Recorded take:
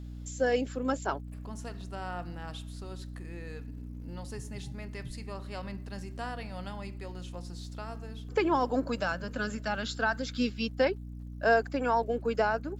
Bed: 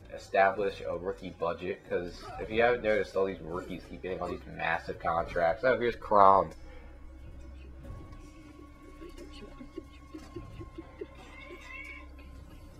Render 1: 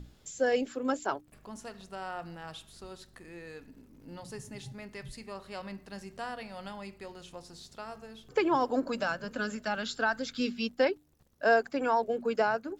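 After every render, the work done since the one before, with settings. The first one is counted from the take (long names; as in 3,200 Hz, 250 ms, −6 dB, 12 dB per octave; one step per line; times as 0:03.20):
mains-hum notches 60/120/180/240/300 Hz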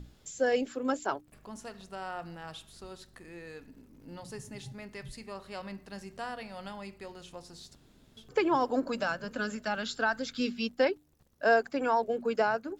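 0:07.75–0:08.17: fill with room tone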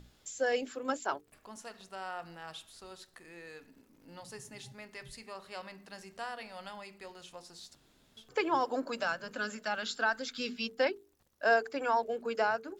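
low-shelf EQ 420 Hz −8.5 dB
mains-hum notches 50/100/150/200/250/300/350/400/450 Hz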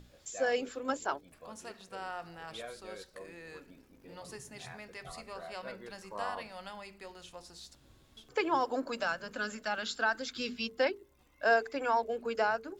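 mix in bed −19.5 dB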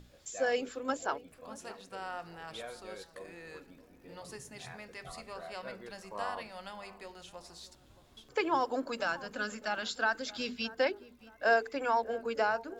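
tape delay 621 ms, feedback 43%, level −16 dB, low-pass 1,200 Hz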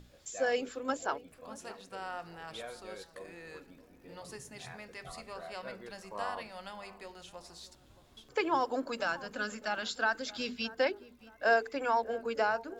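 no processing that can be heard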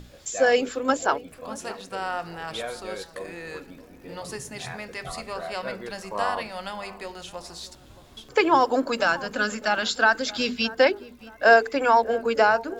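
level +11 dB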